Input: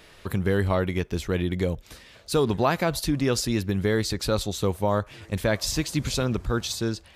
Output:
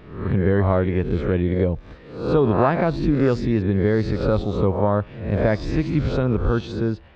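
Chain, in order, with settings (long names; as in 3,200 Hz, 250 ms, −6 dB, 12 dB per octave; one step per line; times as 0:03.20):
peak hold with a rise ahead of every peak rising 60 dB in 0.62 s
head-to-tape spacing loss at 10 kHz 45 dB
level +5.5 dB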